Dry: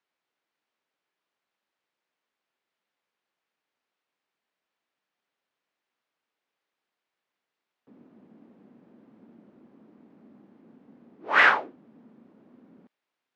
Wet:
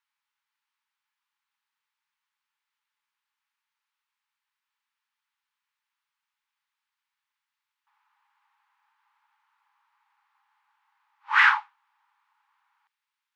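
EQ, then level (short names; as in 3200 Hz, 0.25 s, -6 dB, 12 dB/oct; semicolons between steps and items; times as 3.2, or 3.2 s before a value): brick-wall FIR high-pass 800 Hz; 0.0 dB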